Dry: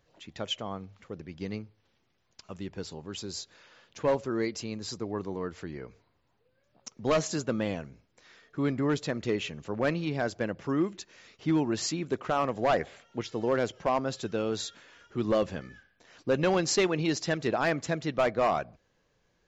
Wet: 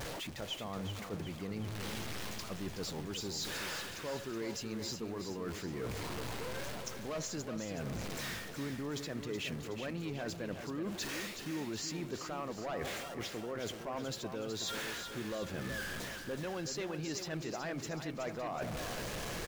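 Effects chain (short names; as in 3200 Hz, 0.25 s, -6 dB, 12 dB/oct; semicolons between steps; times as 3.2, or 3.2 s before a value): zero-crossing step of -39.5 dBFS; limiter -22.5 dBFS, peak gain reduction 4.5 dB; reverse; compressor 6:1, threshold -43 dBFS, peak gain reduction 16.5 dB; reverse; feedback echo 0.372 s, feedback 49%, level -8 dB; gain +4.5 dB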